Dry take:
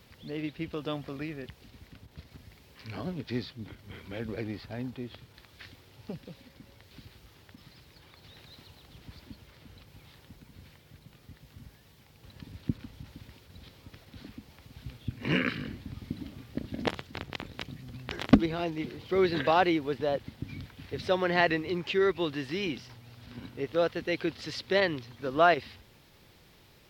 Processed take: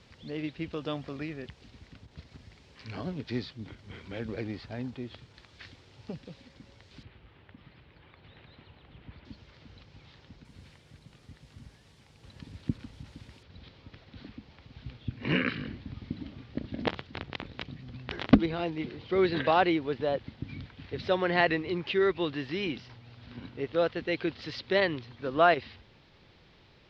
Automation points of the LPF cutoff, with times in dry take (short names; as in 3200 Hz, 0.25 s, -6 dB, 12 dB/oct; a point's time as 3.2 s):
LPF 24 dB/oct
7400 Hz
from 7.03 s 3100 Hz
from 9.25 s 5600 Hz
from 10.45 s 9400 Hz
from 13.43 s 4700 Hz